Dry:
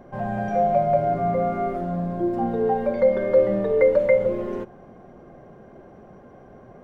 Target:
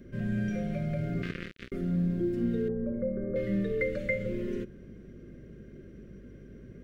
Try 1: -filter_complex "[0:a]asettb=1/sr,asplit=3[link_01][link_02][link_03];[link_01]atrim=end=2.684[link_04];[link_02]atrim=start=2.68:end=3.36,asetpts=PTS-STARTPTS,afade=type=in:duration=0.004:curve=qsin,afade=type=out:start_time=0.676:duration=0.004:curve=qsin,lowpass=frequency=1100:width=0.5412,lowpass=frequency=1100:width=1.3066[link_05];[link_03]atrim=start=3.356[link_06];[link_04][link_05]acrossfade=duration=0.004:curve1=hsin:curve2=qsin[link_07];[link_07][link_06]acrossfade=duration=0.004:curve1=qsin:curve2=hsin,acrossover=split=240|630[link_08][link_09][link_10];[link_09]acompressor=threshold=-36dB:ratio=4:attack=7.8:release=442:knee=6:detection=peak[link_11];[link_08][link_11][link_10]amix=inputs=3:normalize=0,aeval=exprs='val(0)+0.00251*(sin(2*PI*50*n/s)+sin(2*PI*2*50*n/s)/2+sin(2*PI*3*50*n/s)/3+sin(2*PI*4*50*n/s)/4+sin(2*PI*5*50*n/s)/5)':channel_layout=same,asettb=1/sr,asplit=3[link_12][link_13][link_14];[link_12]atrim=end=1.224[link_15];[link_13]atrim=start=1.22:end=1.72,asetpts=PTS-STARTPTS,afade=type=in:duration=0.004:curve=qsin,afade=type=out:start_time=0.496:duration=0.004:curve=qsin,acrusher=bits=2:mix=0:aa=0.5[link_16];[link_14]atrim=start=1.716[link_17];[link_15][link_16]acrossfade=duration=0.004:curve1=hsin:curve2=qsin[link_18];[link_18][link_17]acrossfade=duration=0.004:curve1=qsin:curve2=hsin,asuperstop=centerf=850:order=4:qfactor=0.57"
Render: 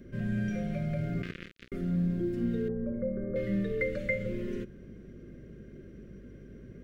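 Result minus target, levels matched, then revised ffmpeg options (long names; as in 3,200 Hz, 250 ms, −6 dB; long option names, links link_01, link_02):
downward compressor: peak gain reduction +4.5 dB
-filter_complex "[0:a]asettb=1/sr,asplit=3[link_01][link_02][link_03];[link_01]atrim=end=2.684[link_04];[link_02]atrim=start=2.68:end=3.36,asetpts=PTS-STARTPTS,afade=type=in:duration=0.004:curve=qsin,afade=type=out:start_time=0.676:duration=0.004:curve=qsin,lowpass=frequency=1100:width=0.5412,lowpass=frequency=1100:width=1.3066[link_05];[link_03]atrim=start=3.356[link_06];[link_04][link_05]acrossfade=duration=0.004:curve1=hsin:curve2=qsin[link_07];[link_07][link_06]acrossfade=duration=0.004:curve1=qsin:curve2=hsin,acrossover=split=240|630[link_08][link_09][link_10];[link_09]acompressor=threshold=-30dB:ratio=4:attack=7.8:release=442:knee=6:detection=peak[link_11];[link_08][link_11][link_10]amix=inputs=3:normalize=0,aeval=exprs='val(0)+0.00251*(sin(2*PI*50*n/s)+sin(2*PI*2*50*n/s)/2+sin(2*PI*3*50*n/s)/3+sin(2*PI*4*50*n/s)/4+sin(2*PI*5*50*n/s)/5)':channel_layout=same,asettb=1/sr,asplit=3[link_12][link_13][link_14];[link_12]atrim=end=1.224[link_15];[link_13]atrim=start=1.22:end=1.72,asetpts=PTS-STARTPTS,afade=type=in:duration=0.004:curve=qsin,afade=type=out:start_time=0.496:duration=0.004:curve=qsin,acrusher=bits=2:mix=0:aa=0.5[link_16];[link_14]atrim=start=1.716[link_17];[link_15][link_16]acrossfade=duration=0.004:curve1=hsin:curve2=qsin[link_18];[link_18][link_17]acrossfade=duration=0.004:curve1=qsin:curve2=hsin,asuperstop=centerf=850:order=4:qfactor=0.57"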